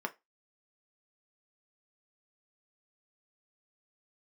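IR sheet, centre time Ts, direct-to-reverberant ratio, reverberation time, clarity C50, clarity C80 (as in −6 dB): 4 ms, 4.0 dB, 0.20 s, 21.5 dB, 30.0 dB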